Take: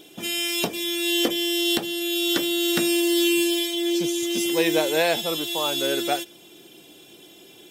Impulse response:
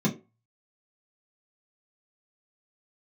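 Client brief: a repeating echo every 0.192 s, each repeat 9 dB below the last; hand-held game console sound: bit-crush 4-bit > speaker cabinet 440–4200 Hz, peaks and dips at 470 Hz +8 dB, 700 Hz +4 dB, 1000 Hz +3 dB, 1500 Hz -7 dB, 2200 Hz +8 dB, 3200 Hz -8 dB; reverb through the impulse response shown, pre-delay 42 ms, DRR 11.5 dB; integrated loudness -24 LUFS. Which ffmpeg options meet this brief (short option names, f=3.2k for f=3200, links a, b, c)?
-filter_complex "[0:a]aecho=1:1:192|384|576|768:0.355|0.124|0.0435|0.0152,asplit=2[a][b];[1:a]atrim=start_sample=2205,adelay=42[c];[b][c]afir=irnorm=-1:irlink=0,volume=-20.5dB[d];[a][d]amix=inputs=2:normalize=0,acrusher=bits=3:mix=0:aa=0.000001,highpass=440,equalizer=f=470:t=q:w=4:g=8,equalizer=f=700:t=q:w=4:g=4,equalizer=f=1k:t=q:w=4:g=3,equalizer=f=1.5k:t=q:w=4:g=-7,equalizer=f=2.2k:t=q:w=4:g=8,equalizer=f=3.2k:t=q:w=4:g=-8,lowpass=f=4.2k:w=0.5412,lowpass=f=4.2k:w=1.3066"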